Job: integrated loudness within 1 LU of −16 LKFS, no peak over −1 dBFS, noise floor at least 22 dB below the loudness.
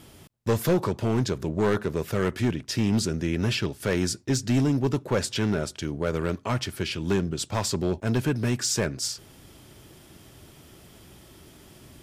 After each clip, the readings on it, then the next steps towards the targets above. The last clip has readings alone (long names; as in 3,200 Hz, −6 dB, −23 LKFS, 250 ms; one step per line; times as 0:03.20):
share of clipped samples 1.4%; peaks flattened at −17.0 dBFS; integrated loudness −26.5 LKFS; sample peak −17.0 dBFS; target loudness −16.0 LKFS
→ clipped peaks rebuilt −17 dBFS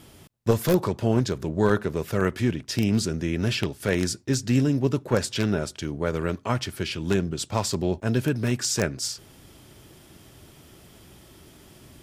share of clipped samples 0.0%; integrated loudness −25.5 LKFS; sample peak −8.0 dBFS; target loudness −16.0 LKFS
→ level +9.5 dB
brickwall limiter −1 dBFS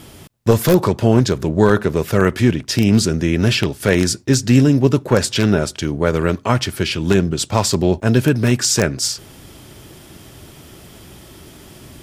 integrated loudness −16.5 LKFS; sample peak −1.0 dBFS; background noise floor −42 dBFS